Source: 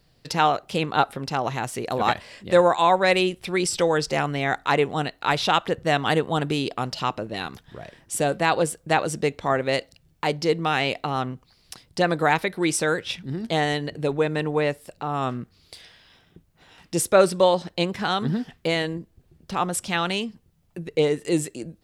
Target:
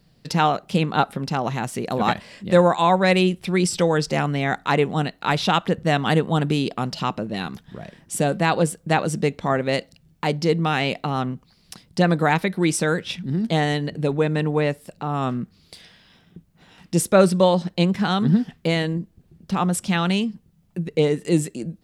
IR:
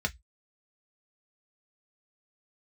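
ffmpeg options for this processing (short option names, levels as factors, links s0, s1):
-af "equalizer=f=190:w=1.7:g=10.5"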